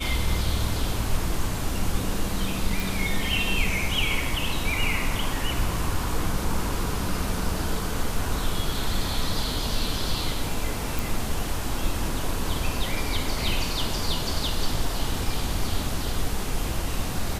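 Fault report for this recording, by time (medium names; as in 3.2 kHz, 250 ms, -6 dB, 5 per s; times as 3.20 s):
2.80 s: pop
10.99 s: pop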